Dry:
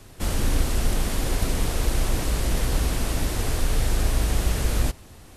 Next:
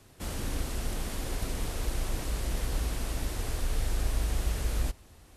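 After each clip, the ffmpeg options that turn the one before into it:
-af "highpass=f=50:p=1,asubboost=boost=2.5:cutoff=73,volume=-8.5dB"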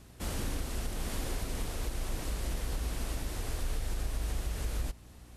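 -af "alimiter=level_in=0.5dB:limit=-24dB:level=0:latency=1:release=278,volume=-0.5dB,aeval=exprs='val(0)+0.002*(sin(2*PI*60*n/s)+sin(2*PI*2*60*n/s)/2+sin(2*PI*3*60*n/s)/3+sin(2*PI*4*60*n/s)/4+sin(2*PI*5*60*n/s)/5)':c=same"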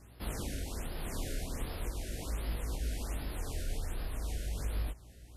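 -af "flanger=delay=18.5:depth=7.8:speed=0.39,afftfilt=real='re*(1-between(b*sr/1024,940*pow(7600/940,0.5+0.5*sin(2*PI*1.3*pts/sr))/1.41,940*pow(7600/940,0.5+0.5*sin(2*PI*1.3*pts/sr))*1.41))':imag='im*(1-between(b*sr/1024,940*pow(7600/940,0.5+0.5*sin(2*PI*1.3*pts/sr))/1.41,940*pow(7600/940,0.5+0.5*sin(2*PI*1.3*pts/sr))*1.41))':win_size=1024:overlap=0.75,volume=1dB"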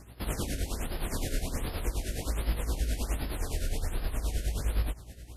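-af "areverse,acompressor=mode=upward:threshold=-46dB:ratio=2.5,areverse,tremolo=f=9.6:d=0.62,volume=8dB"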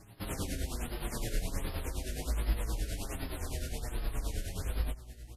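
-filter_complex "[0:a]asplit=2[a][b];[b]adelay=6.8,afreqshift=-0.71[c];[a][c]amix=inputs=2:normalize=1"

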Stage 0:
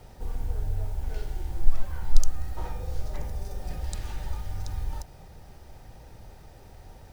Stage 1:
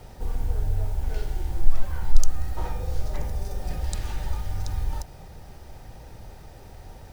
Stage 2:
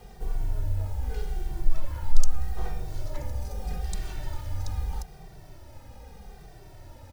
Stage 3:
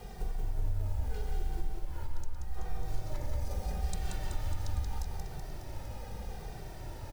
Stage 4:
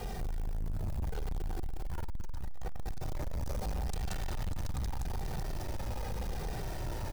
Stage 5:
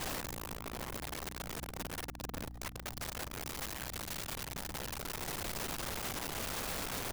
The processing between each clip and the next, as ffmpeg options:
-af "acontrast=28,volume=-1dB"
-filter_complex "[0:a]asplit=2[a][b];[b]adelay=2.1,afreqshift=-0.8[c];[a][c]amix=inputs=2:normalize=1"
-af "acompressor=threshold=-33dB:ratio=6,aecho=1:1:180|378|595.8|835.4|1099:0.631|0.398|0.251|0.158|0.1,volume=2dB"
-af "alimiter=level_in=4dB:limit=-24dB:level=0:latency=1:release=33,volume=-4dB,asoftclip=type=tanh:threshold=-40dB,volume=9dB"
-af "aeval=exprs='val(0)+0.00282*(sin(2*PI*60*n/s)+sin(2*PI*2*60*n/s)/2+sin(2*PI*3*60*n/s)/3+sin(2*PI*4*60*n/s)/4+sin(2*PI*5*60*n/s)/5)':c=same,aeval=exprs='(mod(70.8*val(0)+1,2)-1)/70.8':c=same,volume=3dB"

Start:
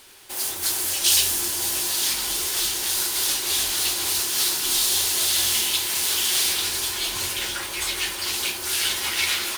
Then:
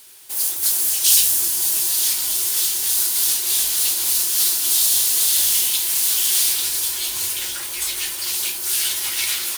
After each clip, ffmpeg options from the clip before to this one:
-af "crystalizer=i=2.5:c=0,volume=-6dB"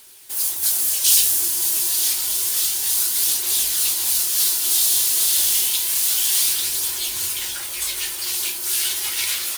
-af "aphaser=in_gain=1:out_gain=1:delay=3.2:decay=0.22:speed=0.29:type=triangular,volume=-1dB"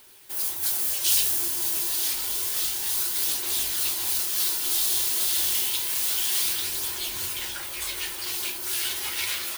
-af "equalizer=f=8.7k:w=0.38:g=-9"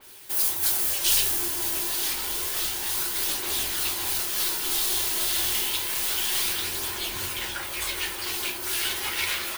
-af "aeval=exprs='0.376*(cos(1*acos(clip(val(0)/0.376,-1,1)))-cos(1*PI/2))+0.0119*(cos(4*acos(clip(val(0)/0.376,-1,1)))-cos(4*PI/2))':c=same,adynamicequalizer=threshold=0.00708:dfrequency=3200:dqfactor=0.7:tfrequency=3200:tqfactor=0.7:attack=5:release=100:ratio=0.375:range=3.5:mode=cutabove:tftype=highshelf,volume=5dB"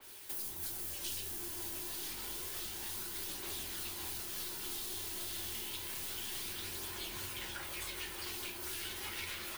-filter_complex "[0:a]acrossover=split=98|320[a][b][c];[a]acompressor=threshold=-49dB:ratio=4[d];[b]acompressor=threshold=-48dB:ratio=4[e];[c]acompressor=threshold=-36dB:ratio=4[f];[d][e][f]amix=inputs=3:normalize=0,volume=-5dB"

